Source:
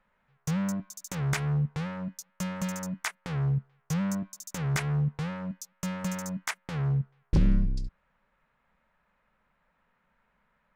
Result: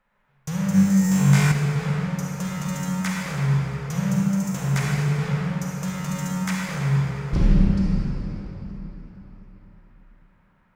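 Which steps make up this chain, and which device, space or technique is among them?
cathedral (convolution reverb RT60 4.2 s, pre-delay 32 ms, DRR −5 dB)
0:00.72–0:01.52: flutter between parallel walls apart 3.6 metres, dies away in 0.7 s
feedback echo with a swinging delay time 229 ms, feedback 65%, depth 193 cents, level −19.5 dB

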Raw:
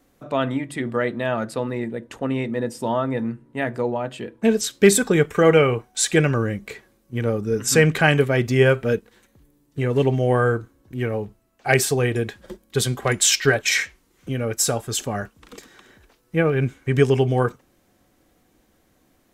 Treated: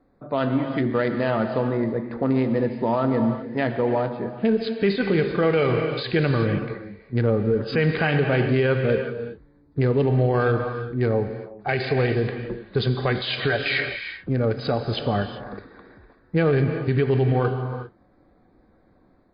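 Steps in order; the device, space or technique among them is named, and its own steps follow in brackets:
adaptive Wiener filter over 15 samples
reverb whose tail is shaped and stops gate 420 ms flat, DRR 8.5 dB
low-bitrate web radio (automatic gain control gain up to 4.5 dB; brickwall limiter −11.5 dBFS, peak gain reduction 10 dB; MP3 24 kbit/s 11,025 Hz)

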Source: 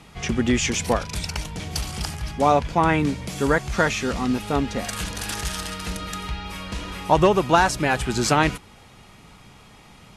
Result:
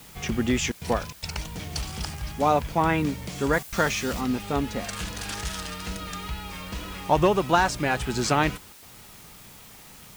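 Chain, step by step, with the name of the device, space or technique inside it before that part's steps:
worn cassette (low-pass filter 9,500 Hz; tape wow and flutter; tape dropouts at 0:00.72/0:01.13/0:03.63/0:08.73, 93 ms −29 dB; white noise bed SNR 22 dB)
0:03.53–0:04.21: high-shelf EQ 5,600 Hz +7.5 dB
level −3.5 dB

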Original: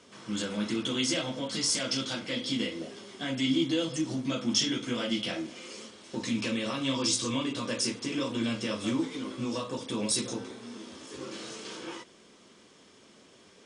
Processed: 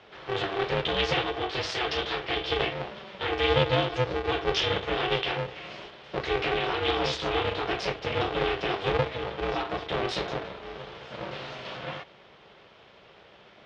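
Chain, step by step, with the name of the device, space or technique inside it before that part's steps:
ring modulator pedal into a guitar cabinet (ring modulator with a square carrier 190 Hz; loudspeaker in its box 82–3,600 Hz, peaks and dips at 83 Hz −9 dB, 170 Hz −4 dB, 260 Hz −10 dB)
level +5.5 dB

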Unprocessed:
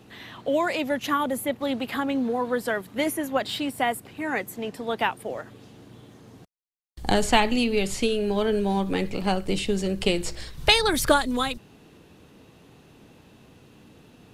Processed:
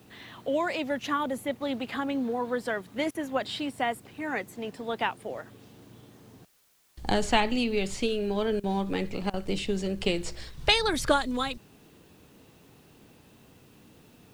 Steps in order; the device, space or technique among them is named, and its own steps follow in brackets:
worn cassette (low-pass filter 8,100 Hz 12 dB per octave; tape wow and flutter 21 cents; tape dropouts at 0:03.11/0:08.60/0:09.30, 36 ms −21 dB; white noise bed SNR 35 dB)
level −4 dB

